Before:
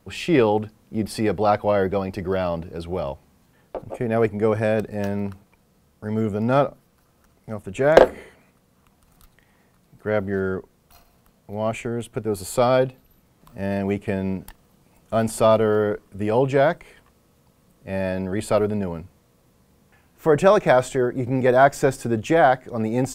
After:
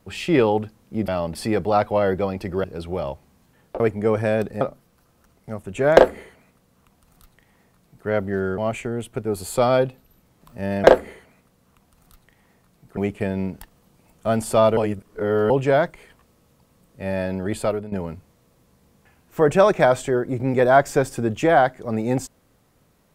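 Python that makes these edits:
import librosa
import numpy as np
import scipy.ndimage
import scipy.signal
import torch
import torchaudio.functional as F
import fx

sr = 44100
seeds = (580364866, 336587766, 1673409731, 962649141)

y = fx.edit(x, sr, fx.move(start_s=2.37, length_s=0.27, to_s=1.08),
    fx.cut(start_s=3.8, length_s=0.38),
    fx.cut(start_s=4.99, length_s=1.62),
    fx.duplicate(start_s=7.94, length_s=2.13, to_s=13.84),
    fx.cut(start_s=10.58, length_s=1.0),
    fx.reverse_span(start_s=15.64, length_s=0.73),
    fx.fade_out_to(start_s=18.42, length_s=0.37, floor_db=-14.5), tone=tone)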